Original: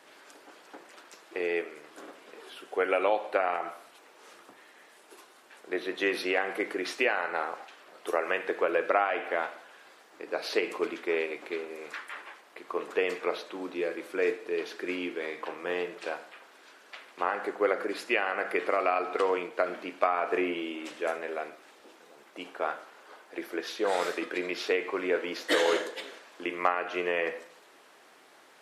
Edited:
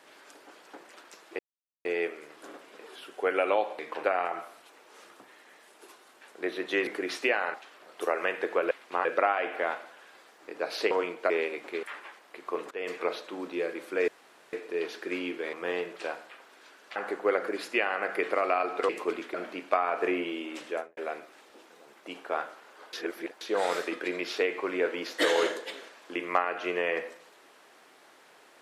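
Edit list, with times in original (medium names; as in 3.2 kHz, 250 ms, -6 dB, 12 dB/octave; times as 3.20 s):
1.39 s: insert silence 0.46 s
6.16–6.63 s: delete
7.30–7.60 s: delete
10.63–11.08 s: swap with 19.25–19.64 s
11.61–12.05 s: delete
12.93–13.19 s: fade in, from -20 dB
14.30 s: insert room tone 0.45 s
15.30–15.55 s: move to 3.33 s
16.98–17.32 s: move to 8.77 s
20.98–21.27 s: studio fade out
23.23–23.71 s: reverse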